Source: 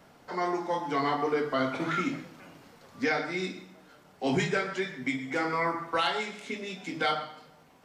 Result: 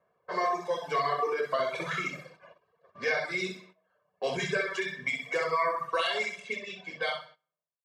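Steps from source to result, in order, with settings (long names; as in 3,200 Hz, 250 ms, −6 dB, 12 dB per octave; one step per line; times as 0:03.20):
fade-out on the ending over 1.56 s
downward compressor, threshold −28 dBFS, peak gain reduction 6 dB
repeating echo 64 ms, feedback 45%, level −3.5 dB
reverb reduction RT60 1 s
noise gate −52 dBFS, range −17 dB
high-pass filter 300 Hz 6 dB per octave
low-pass that shuts in the quiet parts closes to 1,500 Hz, open at −33 dBFS
comb filter 1.8 ms, depth 87%
level +1.5 dB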